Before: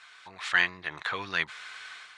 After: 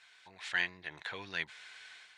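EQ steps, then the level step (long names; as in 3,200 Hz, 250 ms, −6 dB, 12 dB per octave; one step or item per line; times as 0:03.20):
parametric band 1,200 Hz −12 dB 0.36 octaves
−7.0 dB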